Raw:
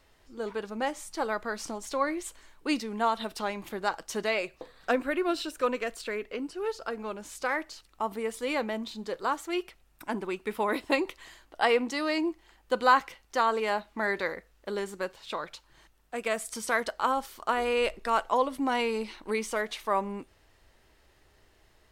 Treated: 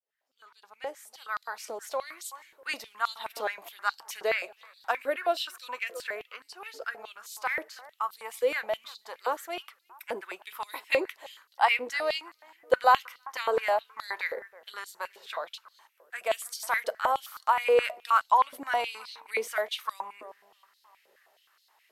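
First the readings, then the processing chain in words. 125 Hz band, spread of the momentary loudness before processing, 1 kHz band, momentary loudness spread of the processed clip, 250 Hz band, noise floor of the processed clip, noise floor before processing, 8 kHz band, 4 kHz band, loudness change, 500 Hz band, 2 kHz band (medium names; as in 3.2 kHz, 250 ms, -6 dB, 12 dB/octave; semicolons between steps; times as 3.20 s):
no reading, 11 LU, +1.0 dB, 17 LU, -15.5 dB, -69 dBFS, -63 dBFS, -2.0 dB, +0.5 dB, 0.0 dB, -1.0 dB, +0.5 dB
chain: fade-in on the opening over 2.02 s; peaking EQ 12 kHz +14 dB 0.24 oct; bucket-brigade echo 323 ms, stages 4096, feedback 38%, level -20 dB; step-sequenced high-pass 9.5 Hz 490–4200 Hz; trim -4 dB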